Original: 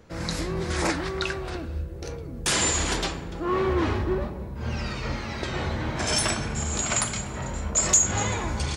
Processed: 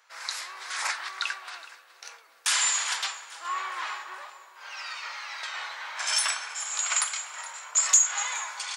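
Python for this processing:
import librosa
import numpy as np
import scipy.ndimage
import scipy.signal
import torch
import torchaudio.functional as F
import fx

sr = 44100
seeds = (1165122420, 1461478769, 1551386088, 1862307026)

p1 = scipy.signal.sosfilt(scipy.signal.butter(4, 980.0, 'highpass', fs=sr, output='sos'), x)
y = p1 + fx.echo_feedback(p1, sr, ms=420, feedback_pct=51, wet_db=-19, dry=0)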